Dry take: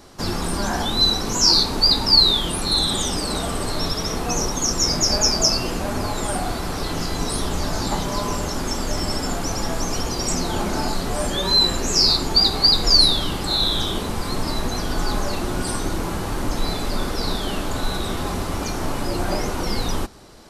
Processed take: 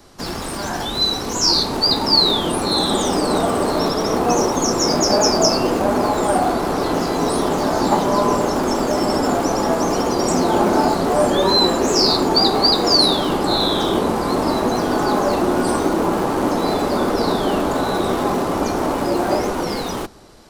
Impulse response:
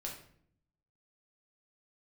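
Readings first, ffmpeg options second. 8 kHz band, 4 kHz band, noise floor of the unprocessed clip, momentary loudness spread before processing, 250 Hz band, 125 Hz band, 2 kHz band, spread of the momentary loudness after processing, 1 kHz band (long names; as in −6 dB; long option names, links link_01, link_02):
−1.0 dB, −1.0 dB, −27 dBFS, 12 LU, +7.5 dB, −0.5 dB, +3.5 dB, 6 LU, +8.5 dB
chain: -filter_complex "[0:a]acrossover=split=200|1200|5200[link_01][link_02][link_03][link_04];[link_01]aeval=exprs='(mod(18.8*val(0)+1,2)-1)/18.8':channel_layout=same[link_05];[link_02]dynaudnorm=framelen=800:gausssize=5:maxgain=13dB[link_06];[link_05][link_06][link_03][link_04]amix=inputs=4:normalize=0,volume=-1dB"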